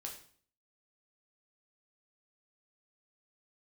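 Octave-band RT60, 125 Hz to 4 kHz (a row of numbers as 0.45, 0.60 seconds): 0.65, 0.60, 0.50, 0.50, 0.45, 0.45 seconds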